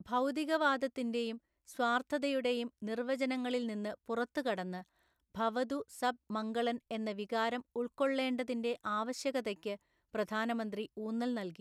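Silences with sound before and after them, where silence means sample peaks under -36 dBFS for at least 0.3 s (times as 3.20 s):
1.33–1.79 s
4.78–5.37 s
9.74–10.15 s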